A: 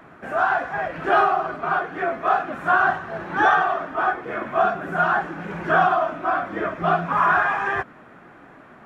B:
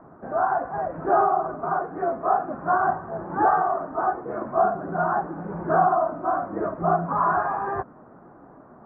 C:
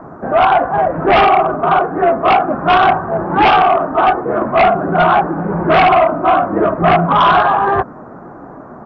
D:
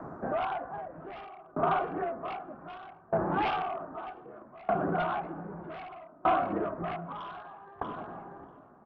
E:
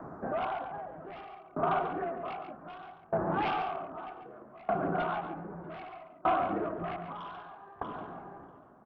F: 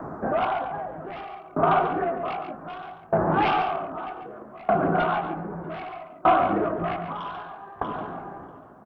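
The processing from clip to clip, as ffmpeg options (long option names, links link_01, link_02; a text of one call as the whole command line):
ffmpeg -i in.wav -af "lowpass=frequency=1100:width=0.5412,lowpass=frequency=1100:width=1.3066" out.wav
ffmpeg -i in.wav -af "aemphasis=mode=production:type=cd,aresample=16000,aeval=exprs='0.376*sin(PI/2*2.51*val(0)/0.376)':channel_layout=same,aresample=44100,volume=3dB" out.wav
ffmpeg -i in.wav -filter_complex "[0:a]acompressor=threshold=-15dB:ratio=4,asplit=2[link_01][link_02];[link_02]adelay=640,lowpass=frequency=1600:poles=1,volume=-15dB,asplit=2[link_03][link_04];[link_04]adelay=640,lowpass=frequency=1600:poles=1,volume=0.54,asplit=2[link_05][link_06];[link_06]adelay=640,lowpass=frequency=1600:poles=1,volume=0.54,asplit=2[link_07][link_08];[link_08]adelay=640,lowpass=frequency=1600:poles=1,volume=0.54,asplit=2[link_09][link_10];[link_10]adelay=640,lowpass=frequency=1600:poles=1,volume=0.54[link_11];[link_01][link_03][link_05][link_07][link_09][link_11]amix=inputs=6:normalize=0,aeval=exprs='val(0)*pow(10,-28*if(lt(mod(0.64*n/s,1),2*abs(0.64)/1000),1-mod(0.64*n/s,1)/(2*abs(0.64)/1000),(mod(0.64*n/s,1)-2*abs(0.64)/1000)/(1-2*abs(0.64)/1000))/20)':channel_layout=same,volume=-7.5dB" out.wav
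ffmpeg -i in.wav -af "aecho=1:1:117|140:0.106|0.355,volume=-2dB" out.wav
ffmpeg -i in.wav -filter_complex "[0:a]asplit=2[link_01][link_02];[link_02]adelay=19,volume=-12dB[link_03];[link_01][link_03]amix=inputs=2:normalize=0,volume=8.5dB" out.wav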